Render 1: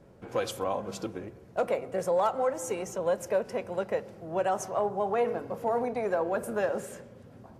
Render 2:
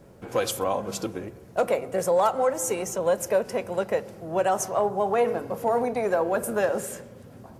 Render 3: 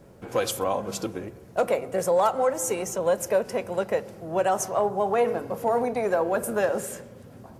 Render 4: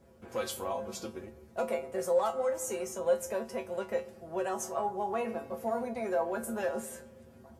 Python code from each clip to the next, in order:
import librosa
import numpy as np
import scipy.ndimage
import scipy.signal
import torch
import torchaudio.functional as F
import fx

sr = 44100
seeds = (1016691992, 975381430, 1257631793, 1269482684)

y1 = fx.high_shelf(x, sr, hz=7300.0, db=10.5)
y1 = y1 * librosa.db_to_amplitude(4.5)
y2 = y1
y3 = fx.comb_fb(y2, sr, f0_hz=75.0, decay_s=0.2, harmonics='odd', damping=0.0, mix_pct=90)